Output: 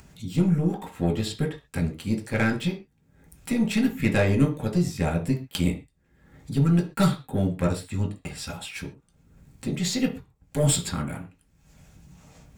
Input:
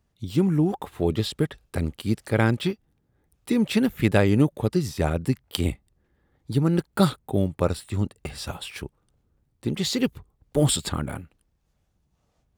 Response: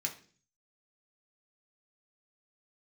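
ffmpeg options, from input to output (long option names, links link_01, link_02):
-filter_complex "[0:a]aeval=exprs='0.596*(cos(1*acos(clip(val(0)/0.596,-1,1)))-cos(1*PI/2))+0.0531*(cos(6*acos(clip(val(0)/0.596,-1,1)))-cos(6*PI/2))':channel_layout=same,acompressor=mode=upward:threshold=-30dB:ratio=2.5[link_01];[1:a]atrim=start_sample=2205,afade=type=out:start_time=0.19:duration=0.01,atrim=end_sample=8820[link_02];[link_01][link_02]afir=irnorm=-1:irlink=0,volume=-3dB"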